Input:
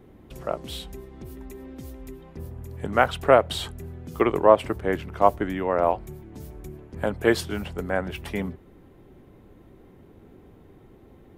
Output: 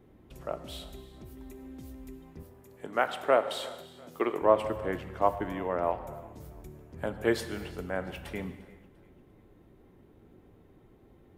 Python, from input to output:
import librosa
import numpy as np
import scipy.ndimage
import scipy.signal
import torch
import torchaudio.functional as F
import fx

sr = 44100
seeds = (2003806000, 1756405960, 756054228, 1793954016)

y = fx.highpass(x, sr, hz=260.0, slope=12, at=(2.42, 4.42))
y = fx.echo_feedback(y, sr, ms=347, feedback_pct=40, wet_db=-22)
y = fx.rev_gated(y, sr, seeds[0], gate_ms=490, shape='falling', drr_db=9.5)
y = y * librosa.db_to_amplitude(-7.5)